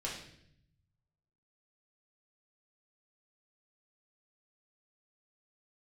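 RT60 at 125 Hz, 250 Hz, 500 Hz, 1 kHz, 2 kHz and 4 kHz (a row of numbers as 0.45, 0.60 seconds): 1.7, 1.1, 0.80, 0.60, 0.70, 0.70 seconds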